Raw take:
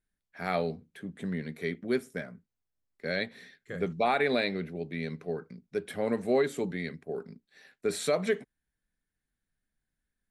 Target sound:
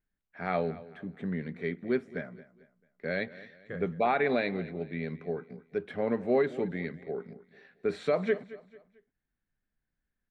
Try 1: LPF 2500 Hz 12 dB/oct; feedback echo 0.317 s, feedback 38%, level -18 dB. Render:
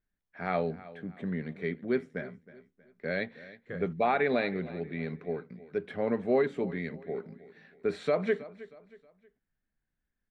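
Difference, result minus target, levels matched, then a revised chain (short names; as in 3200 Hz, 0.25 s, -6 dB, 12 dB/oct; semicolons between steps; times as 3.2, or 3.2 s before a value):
echo 95 ms late
LPF 2500 Hz 12 dB/oct; feedback echo 0.222 s, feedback 38%, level -18 dB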